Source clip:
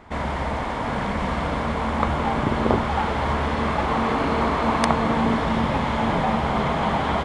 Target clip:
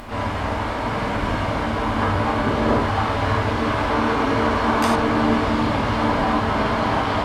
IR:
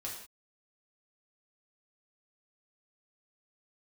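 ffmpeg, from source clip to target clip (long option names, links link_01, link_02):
-filter_complex "[0:a]acompressor=mode=upward:threshold=-29dB:ratio=2.5,asplit=3[link_01][link_02][link_03];[link_02]asetrate=58866,aresample=44100,atempo=0.749154,volume=-5dB[link_04];[link_03]asetrate=66075,aresample=44100,atempo=0.66742,volume=-12dB[link_05];[link_01][link_04][link_05]amix=inputs=3:normalize=0[link_06];[1:a]atrim=start_sample=2205,atrim=end_sample=4410,asetrate=38367,aresample=44100[link_07];[link_06][link_07]afir=irnorm=-1:irlink=0"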